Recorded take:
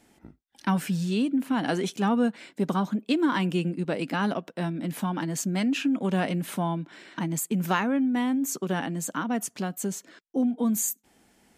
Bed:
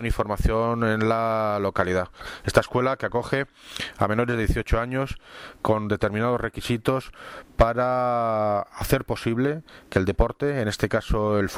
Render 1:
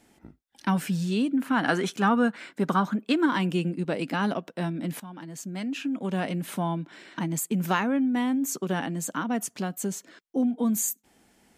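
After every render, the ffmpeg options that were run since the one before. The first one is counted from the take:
-filter_complex "[0:a]asettb=1/sr,asplit=3[s0][s1][s2];[s0]atrim=end=1.374[s3];[s1]atrim=start=1.37:end=3.26,asetpts=PTS-STARTPTS,afade=t=in:d=0.004:c=qsin,afade=t=out:st=1.886:d=0.004:c=qsin,equalizer=f=1400:t=o:w=0.99:g=9[s4];[s2]atrim=start=3.256[s5];[s3][s4]acrossfade=d=0.004:c1=hsin:c2=qsin[s6];[s6][s5]acrossfade=d=0.004:c1=qsin:c2=hsin,asplit=2[s7][s8];[s7]atrim=end=5,asetpts=PTS-STARTPTS,afade=t=out:st=4.996:d=0.004:c=hsin:silence=0.177828[s9];[s8]atrim=start=5,asetpts=PTS-STARTPTS,afade=t=in:d=1.75:silence=0.177828[s10];[s9][s10]concat=n=2:v=0:a=1"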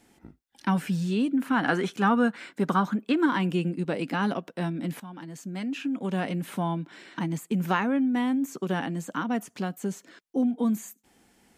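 -filter_complex "[0:a]acrossover=split=3100[s0][s1];[s1]acompressor=threshold=0.00708:ratio=4:attack=1:release=60[s2];[s0][s2]amix=inputs=2:normalize=0,bandreject=f=630:w=14"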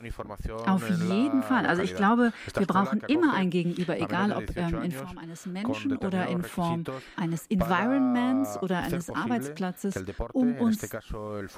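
-filter_complex "[1:a]volume=0.224[s0];[0:a][s0]amix=inputs=2:normalize=0"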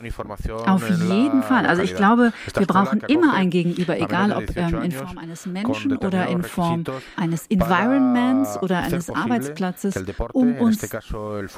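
-af "volume=2.24"

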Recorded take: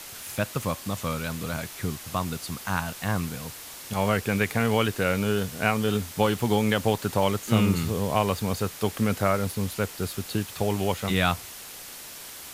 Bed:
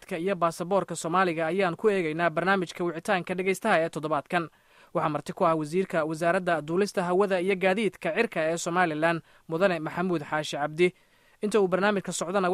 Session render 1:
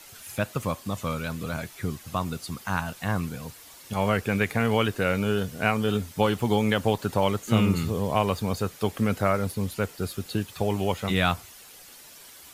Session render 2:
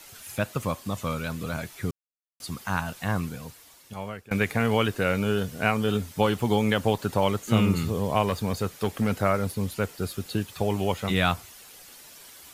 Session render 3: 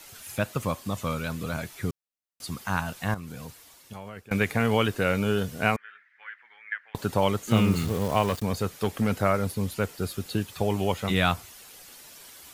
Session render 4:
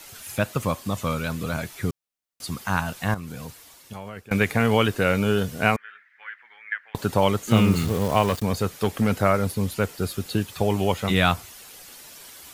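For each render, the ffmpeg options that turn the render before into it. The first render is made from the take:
-af "afftdn=nr=9:nf=-42"
-filter_complex "[0:a]asettb=1/sr,asplit=3[s0][s1][s2];[s0]atrim=end=8.264[s3];[s1]atrim=start=8.26:end=9.14,asetpts=PTS-STARTPTS,afade=t=in:d=0.004:c=qsin,afade=t=out:st=0.876:d=0.004:c=qsin,aeval=exprs='clip(val(0),-1,0.141)':c=same[s4];[s2]atrim=start=9.136[s5];[s3][s4]acrossfade=d=0.004:c1=hsin:c2=qsin[s6];[s6][s5]acrossfade=d=0.004:c1=qsin:c2=hsin,asplit=4[s7][s8][s9][s10];[s7]atrim=end=1.91,asetpts=PTS-STARTPTS,afade=t=out:st=1.906:d=0.004:c=hsin[s11];[s8]atrim=start=1.91:end=2.4,asetpts=PTS-STARTPTS,volume=0[s12];[s9]atrim=start=2.4:end=4.31,asetpts=PTS-STARTPTS,afade=t=in:d=0.004:c=hsin,afade=t=out:st=0.78:d=1.13:silence=0.0707946[s13];[s10]atrim=start=4.31,asetpts=PTS-STARTPTS,afade=t=in:d=0.004:c=hsin:silence=0.0707946[s14];[s11][s12][s13][s14]concat=n=4:v=0:a=1"
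-filter_complex "[0:a]asettb=1/sr,asplit=3[s0][s1][s2];[s0]atrim=end=3.144[s3];[s1]atrim=start=3.14:end=4.17,asetpts=PTS-STARTPTS,afade=t=in:d=0.004:c=qsin,afade=t=out:st=1.026:d=0.004:c=qsin,acompressor=threshold=0.02:ratio=6:attack=3.2:release=140:knee=1:detection=peak[s4];[s2]atrim=start=4.166[s5];[s3][s4]acrossfade=d=0.004:c1=hsin:c2=qsin[s6];[s6][s5]acrossfade=d=0.004:c1=qsin:c2=hsin,asettb=1/sr,asplit=3[s7][s8][s9];[s7]atrim=end=5.764[s10];[s8]atrim=start=5.76:end=6.95,asetpts=PTS-STARTPTS,afade=t=in:d=0.004:c=qsin,afade=t=out:st=1.186:d=0.004:c=qsin,asuperpass=centerf=1800:order=4:qfactor=3.6[s11];[s9]atrim=start=6.946[s12];[s10][s11]acrossfade=d=0.004:c1=hsin:c2=qsin[s13];[s13][s12]acrossfade=d=0.004:c1=qsin:c2=hsin,asettb=1/sr,asplit=3[s14][s15][s16];[s14]atrim=end=7.514[s17];[s15]atrim=start=7.51:end=8.43,asetpts=PTS-STARTPTS,afade=t=in:d=0.004:c=qsin,afade=t=out:st=0.916:d=0.004:c=qsin,aeval=exprs='val(0)*gte(abs(val(0)),0.02)':c=same[s18];[s16]atrim=start=8.426[s19];[s17][s18]acrossfade=d=0.004:c1=hsin:c2=qsin[s20];[s20][s19]acrossfade=d=0.004:c1=qsin:c2=hsin"
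-af "volume=1.5"

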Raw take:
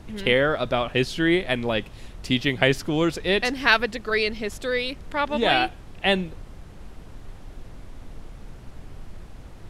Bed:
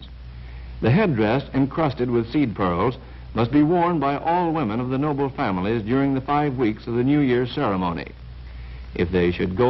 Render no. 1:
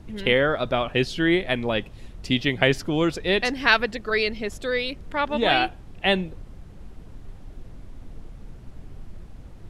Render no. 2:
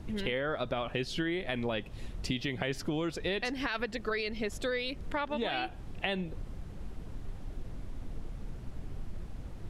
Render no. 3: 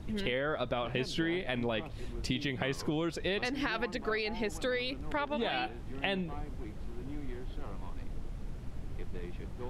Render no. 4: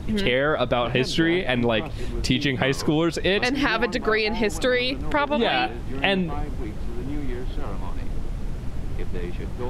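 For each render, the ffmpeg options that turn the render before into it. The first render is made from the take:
-af "afftdn=nr=6:nf=-44"
-af "alimiter=limit=0.2:level=0:latency=1,acompressor=threshold=0.0316:ratio=6"
-filter_complex "[1:a]volume=0.0501[s0];[0:a][s0]amix=inputs=2:normalize=0"
-af "volume=3.76"

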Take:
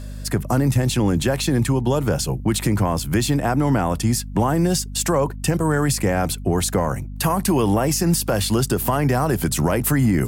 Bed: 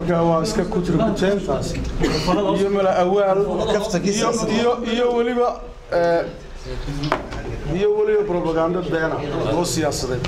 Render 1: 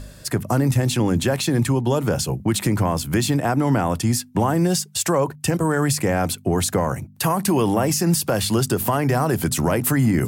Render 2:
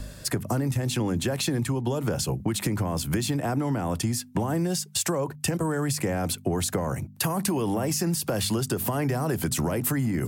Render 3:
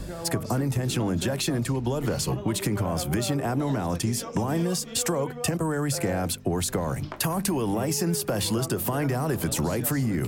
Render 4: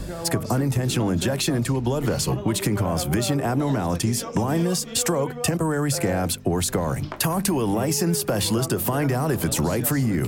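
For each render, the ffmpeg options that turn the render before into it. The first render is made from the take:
-af "bandreject=f=50:t=h:w=4,bandreject=f=100:t=h:w=4,bandreject=f=150:t=h:w=4,bandreject=f=200:t=h:w=4,bandreject=f=250:t=h:w=4"
-filter_complex "[0:a]acrossover=split=390|490|4000[s0][s1][s2][s3];[s2]alimiter=limit=0.1:level=0:latency=1[s4];[s0][s1][s4][s3]amix=inputs=4:normalize=0,acompressor=threshold=0.0708:ratio=6"
-filter_complex "[1:a]volume=0.119[s0];[0:a][s0]amix=inputs=2:normalize=0"
-af "volume=1.5"

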